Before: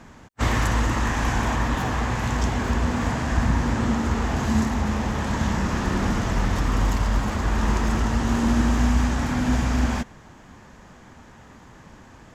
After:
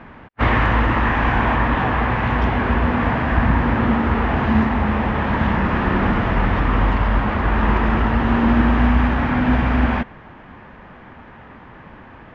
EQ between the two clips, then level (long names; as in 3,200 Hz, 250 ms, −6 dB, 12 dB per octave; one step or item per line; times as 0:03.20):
low-pass filter 2,800 Hz 24 dB per octave
low-shelf EQ 320 Hz −4.5 dB
+8.0 dB